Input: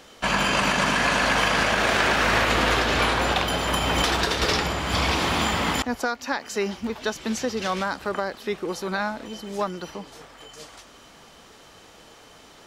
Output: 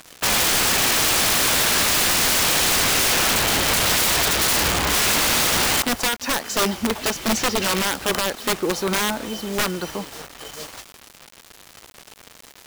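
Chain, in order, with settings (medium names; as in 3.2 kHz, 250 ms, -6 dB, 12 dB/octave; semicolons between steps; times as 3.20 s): integer overflow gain 20.5 dB; bit crusher 7-bit; trim +6.5 dB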